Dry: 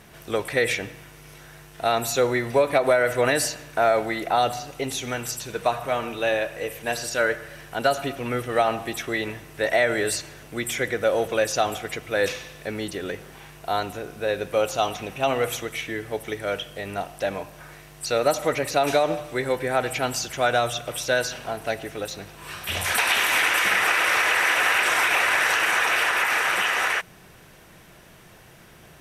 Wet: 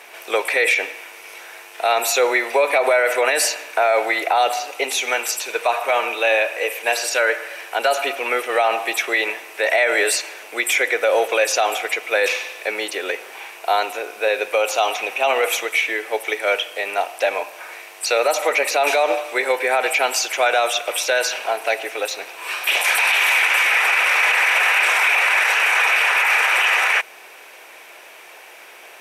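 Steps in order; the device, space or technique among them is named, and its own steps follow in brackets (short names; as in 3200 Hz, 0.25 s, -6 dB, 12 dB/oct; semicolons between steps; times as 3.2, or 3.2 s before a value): laptop speaker (HPF 420 Hz 24 dB/oct; bell 860 Hz +4 dB 0.41 oct; bell 2400 Hz +10 dB 0.37 oct; limiter -15 dBFS, peak gain reduction 12 dB); gain +7 dB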